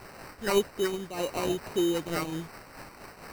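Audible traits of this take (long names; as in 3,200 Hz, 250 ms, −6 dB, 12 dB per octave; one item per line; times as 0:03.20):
a quantiser's noise floor 8 bits, dither triangular
phaser sweep stages 8, 1.8 Hz, lowest notch 630–2,700 Hz
aliases and images of a low sample rate 3,400 Hz, jitter 0%
amplitude modulation by smooth noise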